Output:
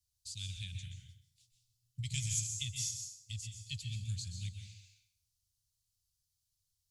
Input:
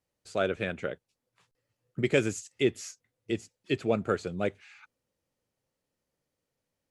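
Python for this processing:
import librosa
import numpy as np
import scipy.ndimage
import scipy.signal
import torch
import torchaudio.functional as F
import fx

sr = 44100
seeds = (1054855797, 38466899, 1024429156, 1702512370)

y = scipy.signal.sosfilt(scipy.signal.cheby2(4, 70, [330.0, 1200.0], 'bandstop', fs=sr, output='sos'), x)
y = fx.rev_plate(y, sr, seeds[0], rt60_s=0.68, hf_ratio=0.85, predelay_ms=115, drr_db=4.0)
y = F.gain(torch.from_numpy(y), 5.0).numpy()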